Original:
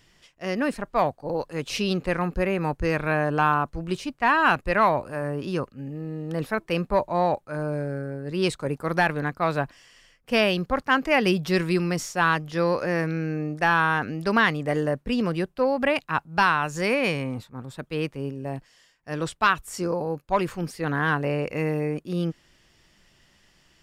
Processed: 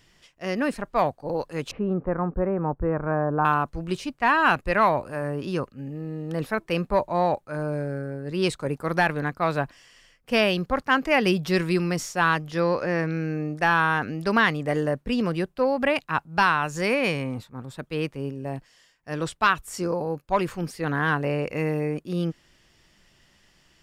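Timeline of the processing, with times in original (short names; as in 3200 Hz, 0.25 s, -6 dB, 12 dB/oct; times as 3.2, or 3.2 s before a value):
1.71–3.45 LPF 1300 Hz 24 dB/oct
12.6–13.12 bell 12000 Hz -13 dB 0.87 oct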